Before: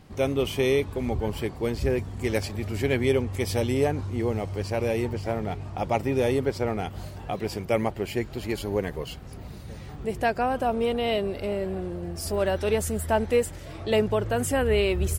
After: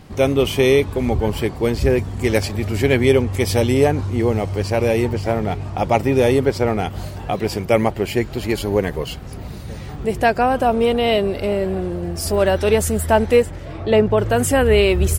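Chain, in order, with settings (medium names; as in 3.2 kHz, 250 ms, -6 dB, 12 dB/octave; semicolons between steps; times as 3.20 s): 13.42–14.18 s: peaking EQ 13 kHz -14 dB 2.3 oct; trim +8.5 dB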